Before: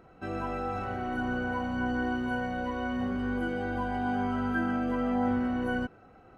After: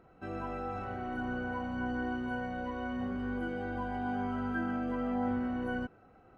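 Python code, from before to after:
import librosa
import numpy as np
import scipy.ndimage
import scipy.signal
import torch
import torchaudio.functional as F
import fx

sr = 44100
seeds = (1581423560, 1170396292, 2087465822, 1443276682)

y = fx.high_shelf(x, sr, hz=4000.0, db=-6.0)
y = F.gain(torch.from_numpy(y), -4.5).numpy()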